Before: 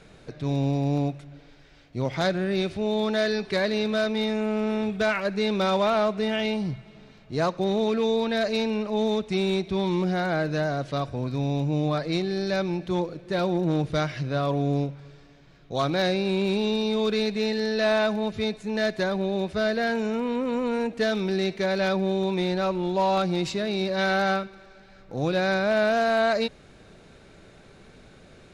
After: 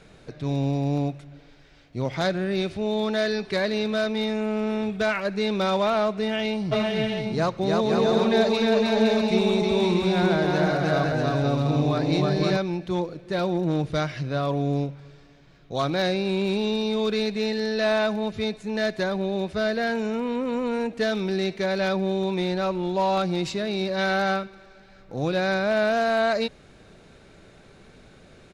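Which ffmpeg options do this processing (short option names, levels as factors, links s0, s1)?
-filter_complex "[0:a]asplit=3[s0][s1][s2];[s0]afade=t=out:st=6.71:d=0.02[s3];[s1]aecho=1:1:310|511.5|642.5|727.6|782.9:0.794|0.631|0.501|0.398|0.316,afade=t=in:st=6.71:d=0.02,afade=t=out:st=12.56:d=0.02[s4];[s2]afade=t=in:st=12.56:d=0.02[s5];[s3][s4][s5]amix=inputs=3:normalize=0"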